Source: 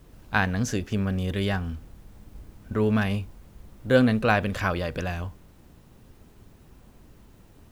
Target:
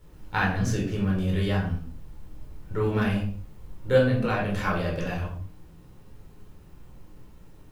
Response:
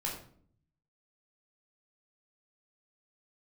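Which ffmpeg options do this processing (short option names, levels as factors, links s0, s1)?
-filter_complex "[0:a]asettb=1/sr,asplit=3[s0][s1][s2];[s0]atrim=end=3.974[s3];[s1]atrim=start=3.97:end=4.51,asetpts=PTS-STARTPTS,afade=t=in:d=0.004:c=qsin,afade=t=out:st=0.536:d=0.004:c=qsin,acompressor=threshold=0.0891:ratio=6[s4];[s2]atrim=start=4.506[s5];[s3][s4]acrossfade=d=0.004:c1=hsin:c2=qsin[s6];[s6][s5]acrossfade=d=0.004:c1=qsin:c2=hsin[s7];[1:a]atrim=start_sample=2205,afade=t=out:st=0.31:d=0.01,atrim=end_sample=14112[s8];[s7][s8]afir=irnorm=-1:irlink=0,volume=0.668"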